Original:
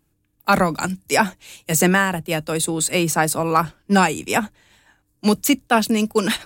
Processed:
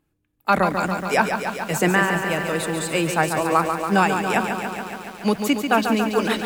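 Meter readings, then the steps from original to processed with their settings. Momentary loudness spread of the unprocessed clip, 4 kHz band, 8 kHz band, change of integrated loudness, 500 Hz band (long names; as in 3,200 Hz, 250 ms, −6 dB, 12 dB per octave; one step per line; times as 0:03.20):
7 LU, −3.5 dB, −8.0 dB, −2.0 dB, 0.0 dB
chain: bass and treble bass −4 dB, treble −9 dB
feedback echo at a low word length 141 ms, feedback 80%, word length 7 bits, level −6.5 dB
level −1.5 dB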